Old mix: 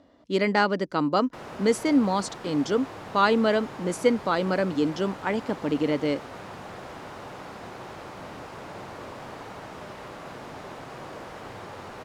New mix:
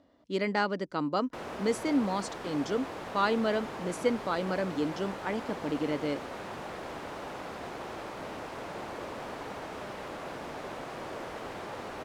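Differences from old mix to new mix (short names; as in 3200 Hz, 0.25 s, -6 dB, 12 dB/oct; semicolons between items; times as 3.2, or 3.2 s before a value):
speech -6.5 dB; reverb: off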